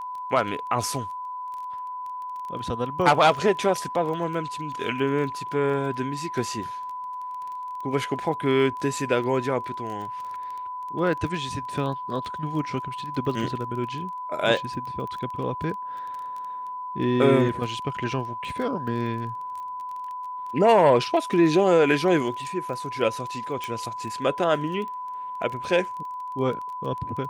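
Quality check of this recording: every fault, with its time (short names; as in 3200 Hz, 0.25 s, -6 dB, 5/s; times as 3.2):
crackle 19/s -33 dBFS
tone 1000 Hz -31 dBFS
23.64 pop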